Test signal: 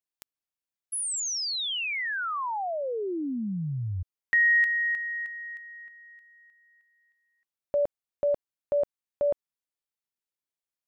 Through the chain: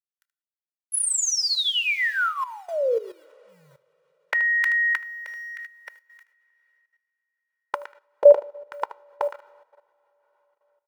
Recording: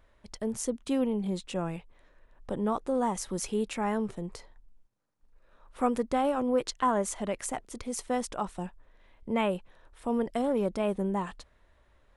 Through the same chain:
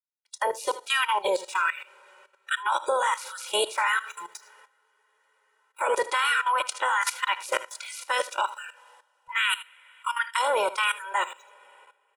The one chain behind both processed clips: spectral limiter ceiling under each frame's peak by 25 dB; in parallel at -6.5 dB: sample gate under -42.5 dBFS; on the sum: LFO high-pass sine 1.3 Hz 540–1600 Hz; gate -51 dBFS, range -26 dB; spectral noise reduction 28 dB; on a send: echo 77 ms -14.5 dB; on the sum: two-slope reverb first 0.46 s, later 4 s, from -18 dB, DRR 15.5 dB; level quantiser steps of 15 dB; comb 2.1 ms, depth 78%; gain +4 dB

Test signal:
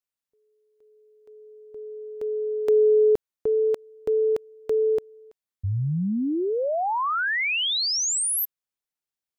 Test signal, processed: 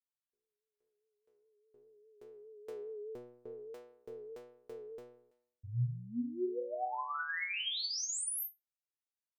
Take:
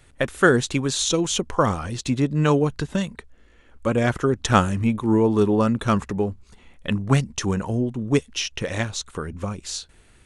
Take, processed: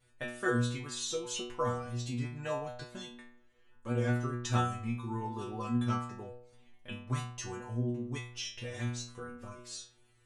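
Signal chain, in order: vibrato 4.9 Hz 57 cents; metallic resonator 120 Hz, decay 0.73 s, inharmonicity 0.002; gain +1 dB

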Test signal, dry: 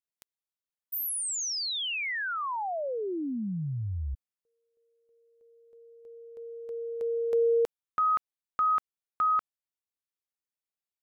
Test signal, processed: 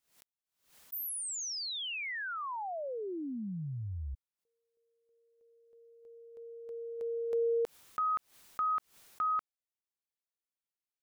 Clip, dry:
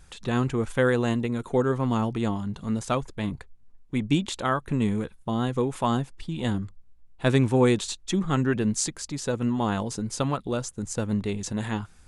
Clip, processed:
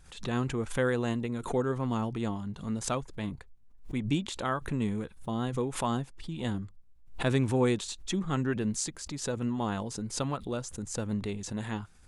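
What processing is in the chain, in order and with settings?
backwards sustainer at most 120 dB/s; gain -6 dB

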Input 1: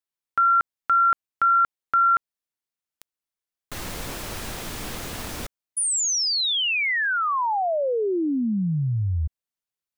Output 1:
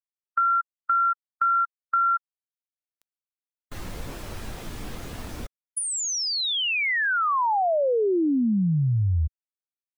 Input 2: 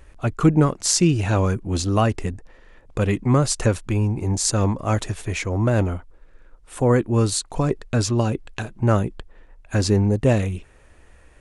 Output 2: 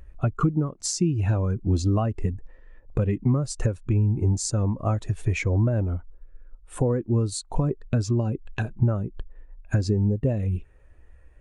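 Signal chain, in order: compressor 16:1, threshold -27 dBFS; spectral expander 1.5:1

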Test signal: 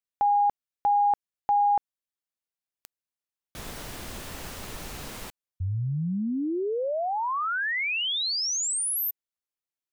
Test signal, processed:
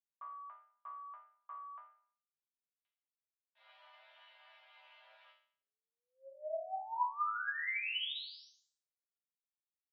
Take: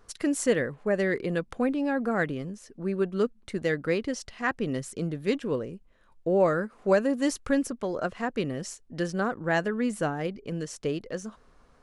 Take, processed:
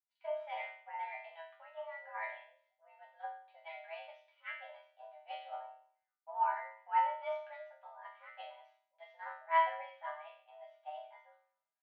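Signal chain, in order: resonator bank A3 sus4, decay 0.7 s; mistuned SSB +320 Hz 300–3100 Hz; three-band expander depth 70%; gain +7 dB

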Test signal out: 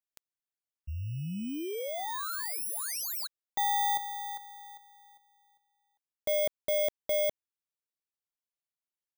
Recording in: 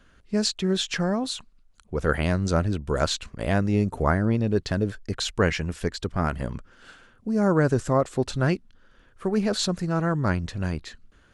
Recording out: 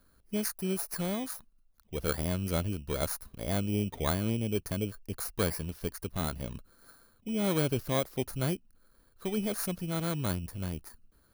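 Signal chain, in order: FFT order left unsorted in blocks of 16 samples; gain -8 dB

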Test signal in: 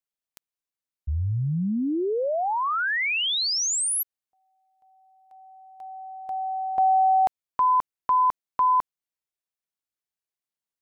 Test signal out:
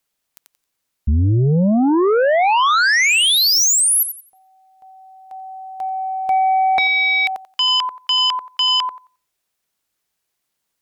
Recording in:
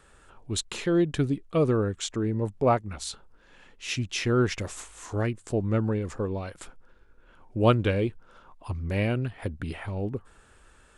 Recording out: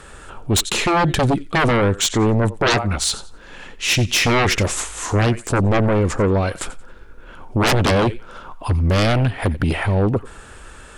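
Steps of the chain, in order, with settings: on a send: thinning echo 89 ms, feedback 23%, high-pass 780 Hz, level -16.5 dB; on the sum: sine folder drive 17 dB, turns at -8 dBFS; gain -4.5 dB

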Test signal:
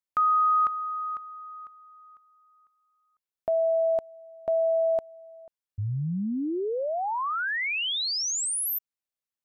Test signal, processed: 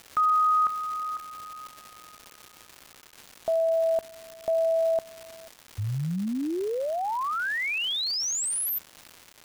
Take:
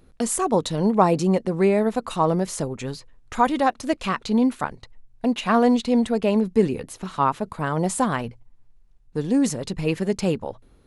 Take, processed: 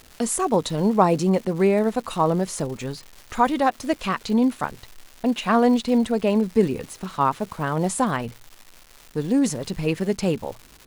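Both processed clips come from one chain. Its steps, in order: crackle 410/s -34 dBFS

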